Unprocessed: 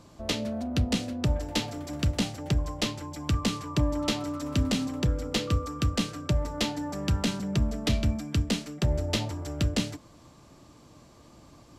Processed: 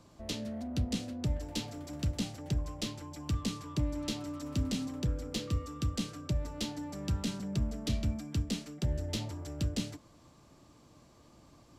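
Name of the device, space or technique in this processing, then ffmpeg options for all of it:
one-band saturation: -filter_complex "[0:a]acrossover=split=420|3200[link_01][link_02][link_03];[link_02]asoftclip=type=tanh:threshold=-40dB[link_04];[link_01][link_04][link_03]amix=inputs=3:normalize=0,volume=-6dB"

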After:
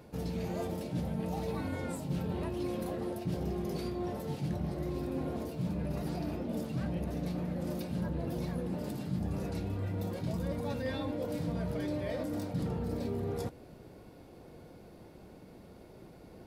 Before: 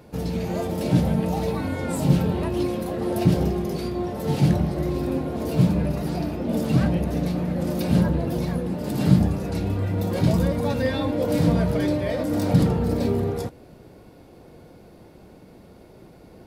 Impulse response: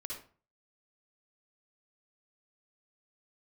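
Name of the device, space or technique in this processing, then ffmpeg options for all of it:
compression on the reversed sound: -af "areverse,acompressor=threshold=-27dB:ratio=6,areverse,volume=-5dB"

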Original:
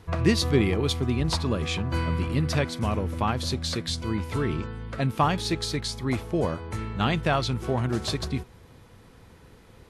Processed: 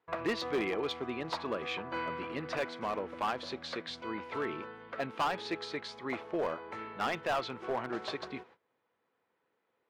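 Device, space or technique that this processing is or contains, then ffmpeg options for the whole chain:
walkie-talkie: -af "highpass=450,lowpass=2500,asoftclip=type=hard:threshold=-24.5dB,agate=range=-19dB:threshold=-54dB:ratio=16:detection=peak,volume=-2dB"

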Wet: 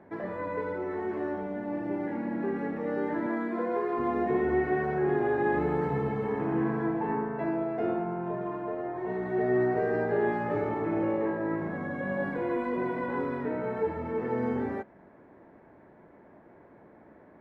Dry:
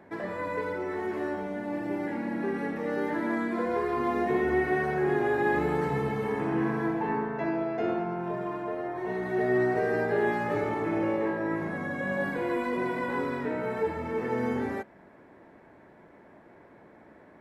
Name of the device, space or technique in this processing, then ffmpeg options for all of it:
through cloth: -filter_complex "[0:a]asettb=1/sr,asplit=3[link_01][link_02][link_03];[link_01]atrim=end=3.264[link_04];[link_02]atrim=start=3.26:end=3.99,asetpts=PTS-STARTPTS,afade=type=in:duration=0.004:curve=qsin,afade=type=out:start_time=0.726:duration=0.004:curve=qsin,highpass=210[link_05];[link_03]atrim=start=3.986[link_06];[link_04][link_05]acrossfade=duration=0.004:curve1=hsin:curve2=qsin[link_07];[link_07][link_06]acrossfade=duration=0.004:curve1=qsin:curve2=hsin,highshelf=frequency=3200:gain=-18"

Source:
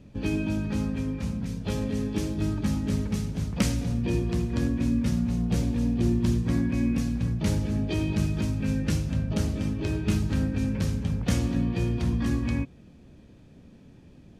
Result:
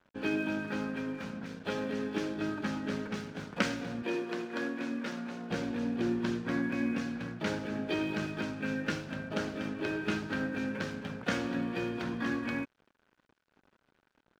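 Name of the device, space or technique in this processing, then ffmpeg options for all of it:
pocket radio on a weak battery: -filter_complex "[0:a]highpass=330,lowpass=3800,aeval=exprs='sgn(val(0))*max(abs(val(0))-0.00178,0)':channel_layout=same,equalizer=frequency=1500:width_type=o:width=0.32:gain=10,asettb=1/sr,asplit=3[link_01][link_02][link_03];[link_01]atrim=end=4.024[link_04];[link_02]atrim=start=4.02:end=5.51,asetpts=PTS-STARTPTS,afade=type=in:duration=0.004:curve=qsin,afade=type=out:start_time=1.486:duration=0.004:curve=qsin,highpass=280[link_05];[link_03]atrim=start=5.506[link_06];[link_04][link_05]acrossfade=duration=0.004:curve1=hsin:curve2=qsin[link_07];[link_07][link_06]acrossfade=duration=0.004:curve1=qsin:curve2=hsin,volume=1dB"

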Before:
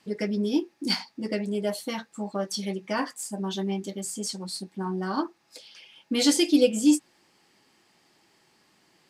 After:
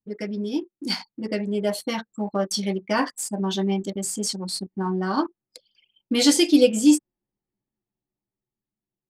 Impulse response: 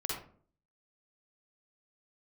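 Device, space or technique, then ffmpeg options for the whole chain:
voice memo with heavy noise removal: -af "anlmdn=0.398,dynaudnorm=framelen=210:gausssize=13:maxgain=7.5dB,volume=-2dB"

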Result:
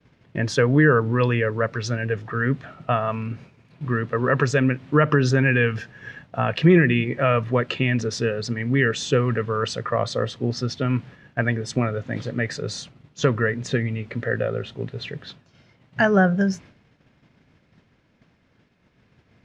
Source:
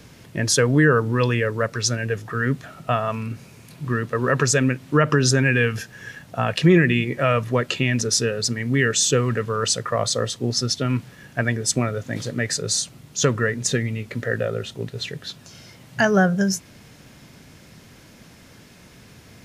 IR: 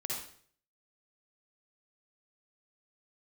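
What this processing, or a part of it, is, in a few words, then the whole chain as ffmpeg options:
hearing-loss simulation: -af "lowpass=3000,agate=range=-33dB:threshold=-38dB:ratio=3:detection=peak"

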